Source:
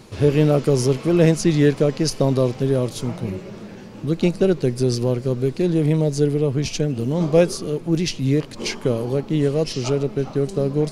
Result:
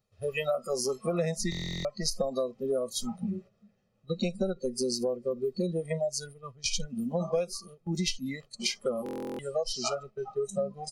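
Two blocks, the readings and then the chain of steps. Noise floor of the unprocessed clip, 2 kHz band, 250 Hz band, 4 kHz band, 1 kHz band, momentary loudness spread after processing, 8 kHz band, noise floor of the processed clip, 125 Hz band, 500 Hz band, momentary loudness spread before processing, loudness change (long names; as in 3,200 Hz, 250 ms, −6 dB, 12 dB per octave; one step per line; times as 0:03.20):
−38 dBFS, −8.5 dB, −15.0 dB, −4.0 dB, −7.5 dB, 6 LU, −3.5 dB, −70 dBFS, −18.5 dB, −11.0 dB, 9 LU, −12.0 dB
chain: noise reduction from a noise print of the clip's start 27 dB
noise gate −44 dBFS, range −9 dB
comb filter 1.6 ms, depth 82%
downward compressor 12 to 1, threshold −26 dBFS, peak gain reduction 19 dB
buffer that repeats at 0:01.50/0:09.04, samples 1,024, times 14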